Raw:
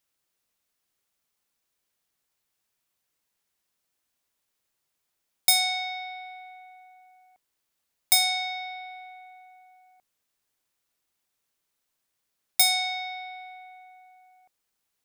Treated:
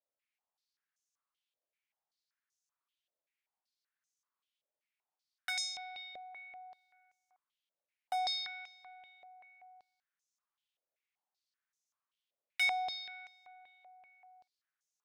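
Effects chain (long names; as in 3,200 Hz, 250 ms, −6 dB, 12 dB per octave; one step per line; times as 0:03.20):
wavefolder on the positive side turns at −13.5 dBFS
band-pass on a step sequencer 5.2 Hz 580–6,300 Hz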